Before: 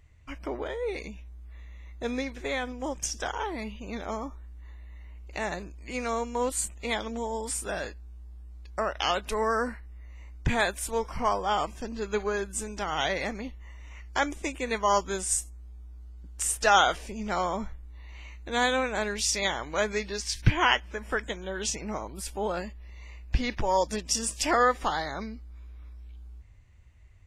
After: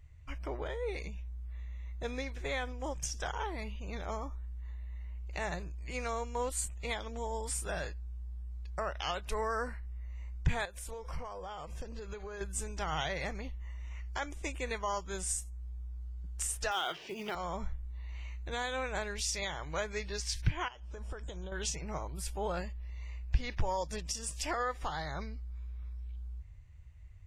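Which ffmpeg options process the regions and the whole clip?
-filter_complex "[0:a]asettb=1/sr,asplit=3[s0][s1][s2];[s0]atrim=end=10.654[s3];[s1]atrim=start=10.65:end=12.41,asetpts=PTS-STARTPTS,afade=t=in:d=0.004:c=qsin,afade=t=out:st=1.756:d=0.004:c=qsin,equalizer=f=510:w=6.4:g=10,acompressor=threshold=0.02:ratio=12:attack=3.2:release=140:knee=1:detection=peak[s4];[s2]atrim=start=12.406[s5];[s3][s4]acrossfade=d=0.004:c1=hsin:c2=qsin[s6];[s6][s5]acrossfade=d=0.004:c1=qsin:c2=hsin,asettb=1/sr,asplit=3[s7][s8][s9];[s7]atrim=end=16.714[s10];[s8]atrim=start=16.71:end=17.35,asetpts=PTS-STARTPTS,afade=t=in:d=0.004:c=qsin,afade=t=out:st=0.636:d=0.004:c=qsin,highpass=f=170:w=0.5412,highpass=f=170:w=1.3066,equalizer=f=200:t=q:w=4:g=-8,equalizer=f=360:t=q:w=4:g=7,equalizer=f=540:t=q:w=4:g=-5,equalizer=f=3000:t=q:w=4:g=8,lowpass=f=5300:w=0.5412,lowpass=f=5300:w=1.3066,acontrast=51,acrusher=bits=6:mode=log:mix=0:aa=0.000001[s11];[s9]atrim=start=17.346[s12];[s10][s11]acrossfade=d=0.004:c1=hsin:c2=qsin[s13];[s13][s12]acrossfade=d=0.004:c1=qsin:c2=hsin,asettb=1/sr,asplit=3[s14][s15][s16];[s14]atrim=end=20.684[s17];[s15]atrim=start=20.68:end=21.52,asetpts=PTS-STARTPTS,afade=t=in:d=0.004:c=qsin,afade=t=out:st=0.836:d=0.004:c=qsin,lowpass=f=9800:w=0.5412,lowpass=f=9800:w=1.3066,equalizer=f=2000:w=1.7:g=-13,acompressor=threshold=0.02:ratio=12:attack=3.2:release=140:knee=1:detection=peak[s18];[s16]atrim=start=21.516[s19];[s17][s18]acrossfade=d=0.004:c1=hsin:c2=qsin[s20];[s20][s19]acrossfade=d=0.004:c1=qsin:c2=hsin,equalizer=f=120:t=o:w=0.44:g=-8,alimiter=limit=0.106:level=0:latency=1:release=324,lowshelf=f=180:t=q:w=3:g=7,volume=0.596"

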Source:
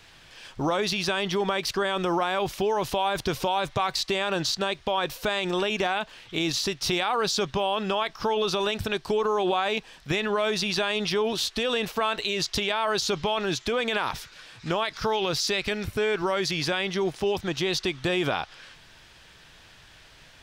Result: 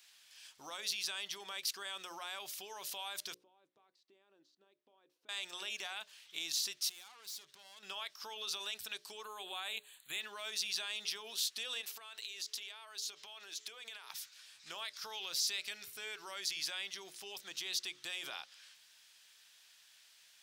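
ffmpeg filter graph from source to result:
-filter_complex "[0:a]asettb=1/sr,asplit=3[s0][s1][s2];[s0]atrim=end=3.344[s3];[s1]atrim=start=3.34:end=5.29,asetpts=PTS-STARTPTS,afade=t=in:d=0.004:c=qsin,afade=t=out:st=1.946:d=0.004:c=qsin,acompressor=threshold=0.0126:ratio=1.5:attack=3.2:release=140:knee=1:detection=peak,bandpass=f=300:t=q:w=3[s4];[s2]atrim=start=5.286[s5];[s3][s4]acrossfade=d=0.004:c1=hsin:c2=qsin[s6];[s6][s5]acrossfade=d=0.004:c1=qsin:c2=hsin,asettb=1/sr,asplit=3[s7][s8][s9];[s7]atrim=end=6.894[s10];[s8]atrim=start=6.89:end=7.83,asetpts=PTS-STARTPTS,afade=t=in:d=0.004:c=qsin,afade=t=out:st=0.936:d=0.004:c=qsin,acompressor=threshold=0.0355:ratio=5:attack=3.2:release=140:knee=1:detection=peak,aeval=exprs='(tanh(56.2*val(0)+0.55)-tanh(0.55))/56.2':c=same[s11];[s9]atrim=start=7.826[s12];[s10][s11]acrossfade=d=0.004:c1=hsin:c2=qsin[s13];[s13][s12]acrossfade=d=0.004:c1=qsin:c2=hsin,asettb=1/sr,asplit=3[s14][s15][s16];[s14]atrim=end=9.244[s17];[s15]atrim=start=9.24:end=10.21,asetpts=PTS-STARTPTS,afade=t=in:d=0.004:c=qsin,afade=t=out:st=0.966:d=0.004:c=qsin,asuperstop=centerf=5400:order=8:qfactor=2.2,highshelf=f=10000:g=10.5[s18];[s16]atrim=start=10.206[s19];[s17][s18]acrossfade=d=0.004:c1=hsin:c2=qsin[s20];[s20][s19]acrossfade=d=0.004:c1=qsin:c2=hsin,asettb=1/sr,asplit=3[s21][s22][s23];[s21]atrim=end=11.814[s24];[s22]atrim=start=11.81:end=14.1,asetpts=PTS-STARTPTS,afade=t=in:d=0.004:c=qsin,afade=t=out:st=2.286:d=0.004:c=qsin,highpass=260,acompressor=threshold=0.0355:ratio=12:attack=3.2:release=140:knee=1:detection=peak,aeval=exprs='val(0)+0.00447*sin(2*PI*430*n/s)':c=same[s25];[s23]atrim=start=14.096[s26];[s24][s25]acrossfade=d=0.004:c1=hsin:c2=qsin[s27];[s27][s26]acrossfade=d=0.004:c1=qsin:c2=hsin,aderivative,bandreject=f=60:t=h:w=6,bandreject=f=120:t=h:w=6,bandreject=f=180:t=h:w=6,bandreject=f=240:t=h:w=6,bandreject=f=300:t=h:w=6,bandreject=f=360:t=h:w=6,bandreject=f=420:t=h:w=6,bandreject=f=480:t=h:w=6,bandreject=f=540:t=h:w=6,bandreject=f=600:t=h:w=6,volume=0.668"

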